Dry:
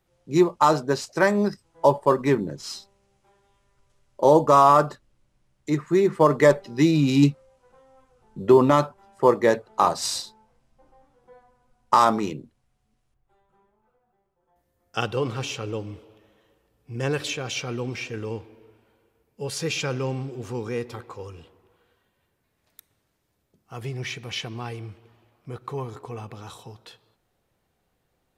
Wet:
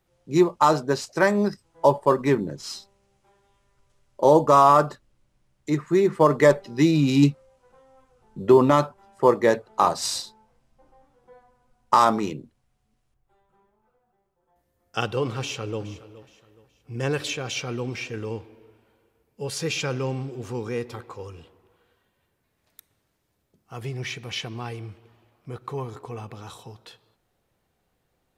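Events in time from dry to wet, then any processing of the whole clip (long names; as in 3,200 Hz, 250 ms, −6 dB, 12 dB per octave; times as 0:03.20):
0:15.37–0:15.80: delay throw 420 ms, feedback 35%, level −17 dB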